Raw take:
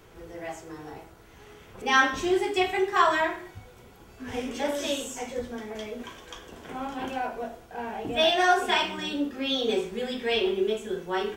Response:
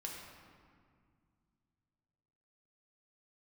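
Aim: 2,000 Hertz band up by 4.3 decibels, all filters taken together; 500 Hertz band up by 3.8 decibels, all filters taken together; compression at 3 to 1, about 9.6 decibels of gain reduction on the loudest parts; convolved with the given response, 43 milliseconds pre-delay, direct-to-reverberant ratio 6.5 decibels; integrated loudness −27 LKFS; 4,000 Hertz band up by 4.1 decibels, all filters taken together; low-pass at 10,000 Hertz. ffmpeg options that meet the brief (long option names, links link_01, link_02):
-filter_complex "[0:a]lowpass=10000,equalizer=frequency=500:width_type=o:gain=5,equalizer=frequency=2000:width_type=o:gain=4.5,equalizer=frequency=4000:width_type=o:gain=3.5,acompressor=threshold=-26dB:ratio=3,asplit=2[link_01][link_02];[1:a]atrim=start_sample=2205,adelay=43[link_03];[link_02][link_03]afir=irnorm=-1:irlink=0,volume=-5.5dB[link_04];[link_01][link_04]amix=inputs=2:normalize=0,volume=2dB"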